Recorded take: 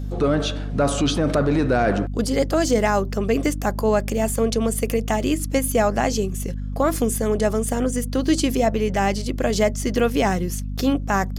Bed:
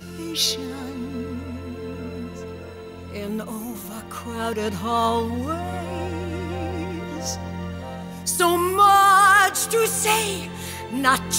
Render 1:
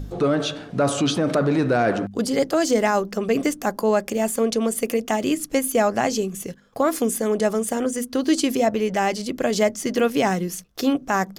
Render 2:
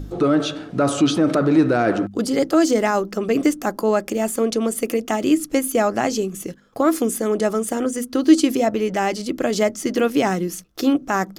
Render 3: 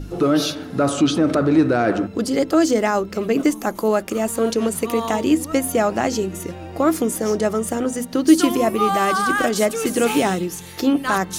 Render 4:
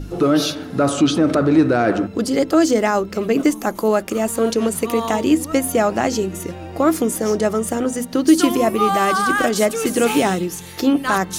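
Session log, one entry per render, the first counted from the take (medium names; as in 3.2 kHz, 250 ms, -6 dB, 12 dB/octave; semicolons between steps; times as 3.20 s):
de-hum 50 Hz, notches 5
small resonant body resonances 320/1300 Hz, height 8 dB
add bed -6.5 dB
trim +1.5 dB; peak limiter -3 dBFS, peak gain reduction 2.5 dB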